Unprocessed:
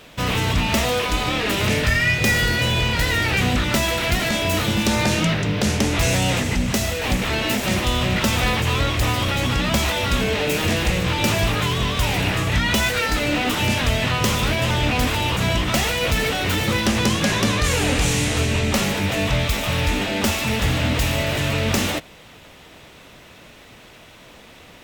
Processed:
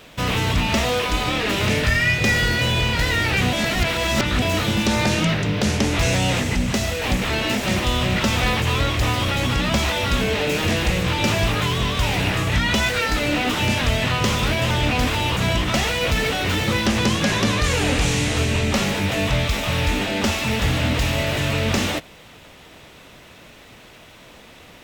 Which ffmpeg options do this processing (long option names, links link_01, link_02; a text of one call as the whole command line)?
ffmpeg -i in.wav -filter_complex "[0:a]asplit=3[link_01][link_02][link_03];[link_01]atrim=end=3.532[link_04];[link_02]atrim=start=3.528:end=4.422,asetpts=PTS-STARTPTS,areverse[link_05];[link_03]atrim=start=4.418[link_06];[link_04][link_05]acrossfade=duration=0.004:curve1=hsin:curve2=hsin[link_07];[link_07][link_06]acrossfade=duration=0.004:curve1=hsin:curve2=hsin,acrossover=split=7200[link_08][link_09];[link_09]acompressor=threshold=-37dB:ratio=4:attack=1:release=60[link_10];[link_08][link_10]amix=inputs=2:normalize=0" out.wav